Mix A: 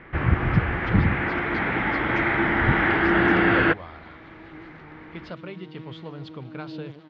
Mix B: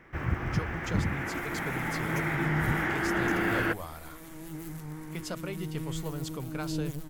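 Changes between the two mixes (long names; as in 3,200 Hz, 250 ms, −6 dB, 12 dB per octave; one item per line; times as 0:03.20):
first sound −9.0 dB
second sound: remove high-pass filter 270 Hz 12 dB per octave
master: remove Butterworth low-pass 4,100 Hz 36 dB per octave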